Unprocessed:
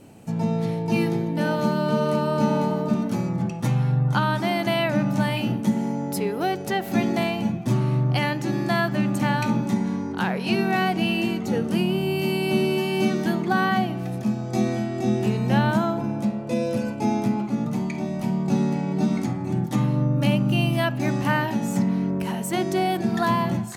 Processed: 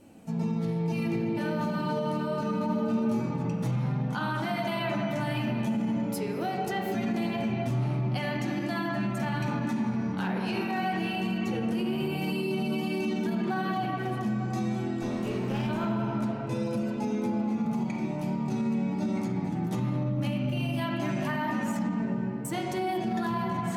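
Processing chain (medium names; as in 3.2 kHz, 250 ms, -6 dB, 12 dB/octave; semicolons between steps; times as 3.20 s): 15.02–15.69 s: comb filter that takes the minimum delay 0.34 ms; 21.88–22.45 s: elliptic low-pass 540 Hz; reverberation RT60 3.6 s, pre-delay 9 ms, DRR 0 dB; flange 0.23 Hz, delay 3.3 ms, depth 8.9 ms, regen -38%; peak limiter -18.5 dBFS, peak gain reduction 9.5 dB; 2.66–3.20 s: doubling 27 ms -7 dB; trim -3 dB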